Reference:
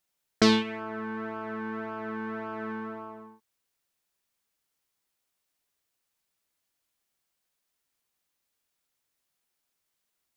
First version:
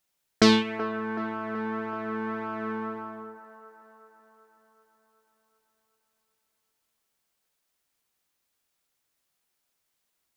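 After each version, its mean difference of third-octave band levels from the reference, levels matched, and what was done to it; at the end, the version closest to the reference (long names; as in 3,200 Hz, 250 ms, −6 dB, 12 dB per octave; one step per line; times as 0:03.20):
1.0 dB: delay with a band-pass on its return 378 ms, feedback 58%, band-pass 740 Hz, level −9 dB
level +2.5 dB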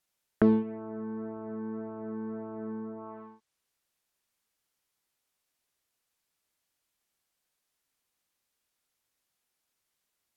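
6.0 dB: treble cut that deepens with the level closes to 570 Hz, closed at −33.5 dBFS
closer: first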